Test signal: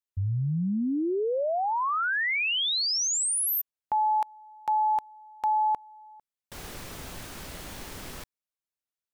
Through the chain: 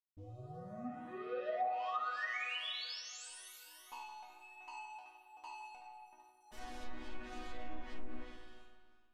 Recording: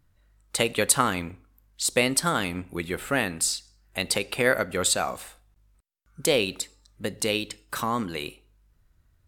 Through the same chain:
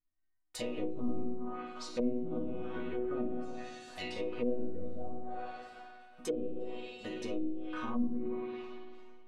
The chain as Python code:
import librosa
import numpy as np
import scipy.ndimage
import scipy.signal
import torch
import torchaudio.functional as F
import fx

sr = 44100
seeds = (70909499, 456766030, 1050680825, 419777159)

p1 = fx.high_shelf(x, sr, hz=3600.0, db=-7.0)
p2 = p1 + fx.echo_tape(p1, sr, ms=381, feedback_pct=52, wet_db=-13, lp_hz=4000.0, drive_db=7.0, wow_cents=15, dry=0)
p3 = fx.dynamic_eq(p2, sr, hz=5900.0, q=3.9, threshold_db=-52.0, ratio=4.0, max_db=7)
p4 = fx.leveller(p3, sr, passes=3)
p5 = fx.env_flanger(p4, sr, rest_ms=9.2, full_db=-16.0)
p6 = fx.resonator_bank(p5, sr, root=59, chord='major', decay_s=0.7)
p7 = fx.rev_spring(p6, sr, rt60_s=1.7, pass_ms=(54,), chirp_ms=25, drr_db=1.5)
p8 = fx.env_lowpass_down(p7, sr, base_hz=330.0, full_db=-35.0)
y = p8 * librosa.db_to_amplitude(7.5)